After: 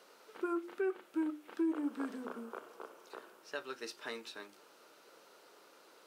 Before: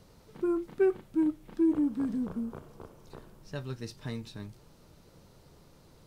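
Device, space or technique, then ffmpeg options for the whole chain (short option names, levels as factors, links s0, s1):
laptop speaker: -af "highpass=f=340:w=0.5412,highpass=f=340:w=1.3066,equalizer=f=1400:t=o:w=0.57:g=8,equalizer=f=2700:t=o:w=0.57:g=4.5,bandreject=f=50:t=h:w=6,bandreject=f=100:t=h:w=6,bandreject=f=150:t=h:w=6,bandreject=f=200:t=h:w=6,bandreject=f=250:t=h:w=6,bandreject=f=300:t=h:w=6,bandreject=f=350:t=h:w=6,alimiter=level_in=1.33:limit=0.0631:level=0:latency=1:release=300,volume=0.75"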